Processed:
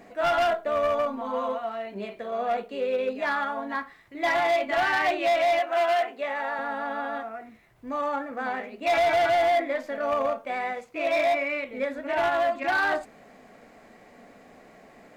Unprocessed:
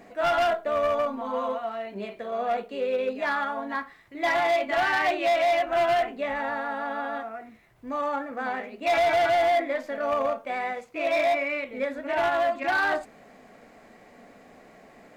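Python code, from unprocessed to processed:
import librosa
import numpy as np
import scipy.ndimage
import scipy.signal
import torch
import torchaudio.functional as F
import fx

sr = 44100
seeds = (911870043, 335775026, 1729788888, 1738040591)

y = fx.highpass(x, sr, hz=410.0, slope=12, at=(5.59, 6.59))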